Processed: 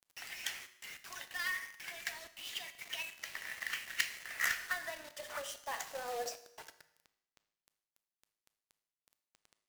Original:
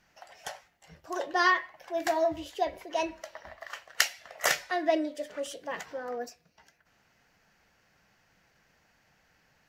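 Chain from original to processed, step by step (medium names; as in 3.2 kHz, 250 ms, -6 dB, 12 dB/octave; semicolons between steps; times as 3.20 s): 5.51–6.26 s: pre-emphasis filter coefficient 0.8; compression 6:1, threshold -41 dBFS, peak gain reduction 21 dB; high-pass sweep 2.2 kHz -> 310 Hz, 3.96–7.30 s; companded quantiser 4-bit; vibrato 11 Hz 19 cents; feedback comb 53 Hz, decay 0.88 s, harmonics odd, mix 50%; Schroeder reverb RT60 0.71 s, combs from 25 ms, DRR 13.5 dB; trim +10 dB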